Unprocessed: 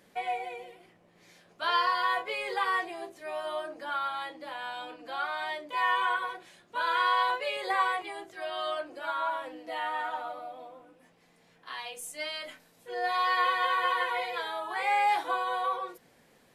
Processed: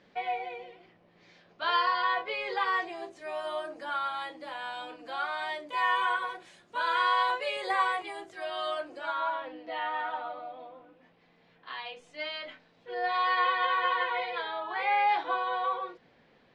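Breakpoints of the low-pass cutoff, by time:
low-pass 24 dB/octave
2.27 s 4.9 kHz
3.44 s 9.6 kHz
8.85 s 9.6 kHz
9.46 s 4.2 kHz

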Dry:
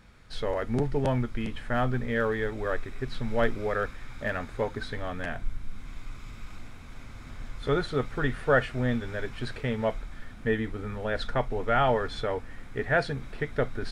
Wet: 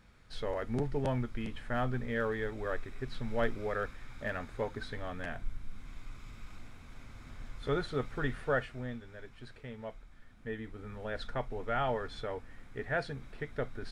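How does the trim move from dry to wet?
8.37 s -6 dB
9.05 s -15.5 dB
10.22 s -15.5 dB
11.02 s -8.5 dB

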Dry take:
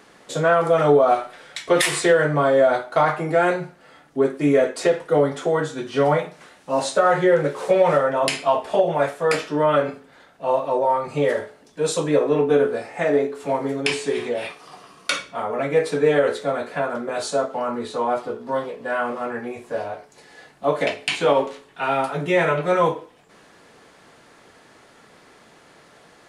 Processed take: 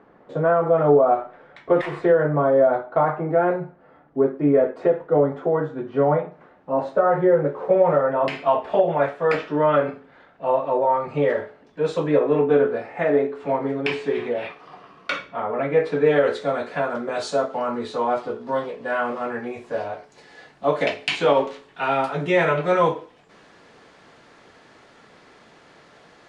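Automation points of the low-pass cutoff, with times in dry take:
7.84 s 1.1 kHz
8.52 s 2.5 kHz
15.93 s 2.5 kHz
16.40 s 5.8 kHz

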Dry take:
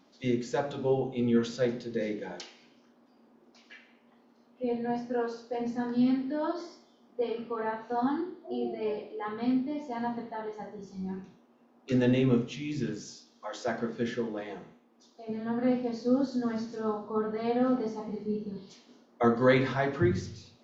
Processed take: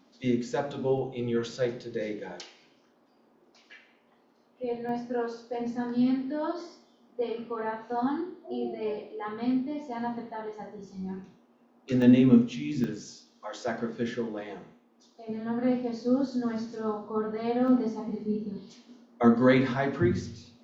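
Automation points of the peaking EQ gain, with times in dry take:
peaking EQ 240 Hz 0.29 oct
+4 dB
from 0.98 s -7 dB
from 4.89 s +0.5 dB
from 12.02 s +10.5 dB
from 12.84 s +1 dB
from 17.68 s +8 dB

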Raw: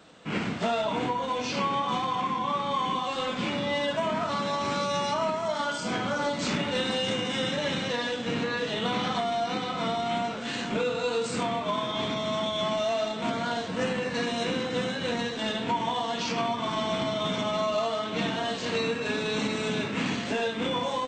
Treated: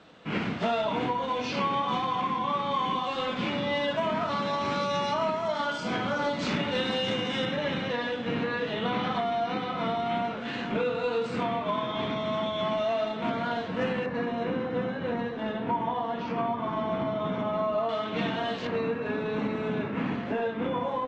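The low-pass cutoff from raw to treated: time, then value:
4.3 kHz
from 7.45 s 2.8 kHz
from 14.06 s 1.5 kHz
from 17.89 s 3.1 kHz
from 18.67 s 1.6 kHz

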